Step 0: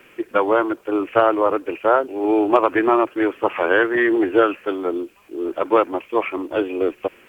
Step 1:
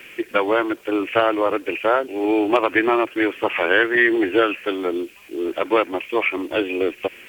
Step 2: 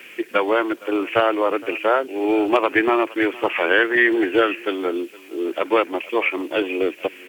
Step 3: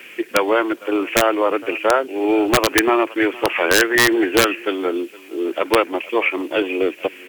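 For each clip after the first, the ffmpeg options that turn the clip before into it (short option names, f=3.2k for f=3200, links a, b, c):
-filter_complex "[0:a]highshelf=f=1.6k:t=q:w=1.5:g=7,asplit=2[a][b];[b]acompressor=threshold=-23dB:ratio=6,volume=-1.5dB[c];[a][c]amix=inputs=2:normalize=0,volume=-3.5dB"
-filter_complex "[0:a]acrossover=split=140[a][b];[a]acrusher=bits=6:mix=0:aa=0.000001[c];[c][b]amix=inputs=2:normalize=0,aecho=1:1:464:0.0841"
-af "aeval=exprs='(mod(2.24*val(0)+1,2)-1)/2.24':c=same,volume=2dB"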